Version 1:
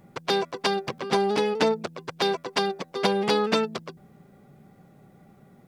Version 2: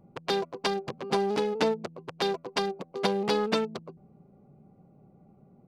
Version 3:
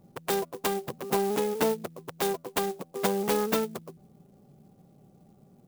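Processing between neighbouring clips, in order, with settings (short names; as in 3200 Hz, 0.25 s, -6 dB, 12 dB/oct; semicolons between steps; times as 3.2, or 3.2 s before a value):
Wiener smoothing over 25 samples; gain -3 dB
clock jitter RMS 0.054 ms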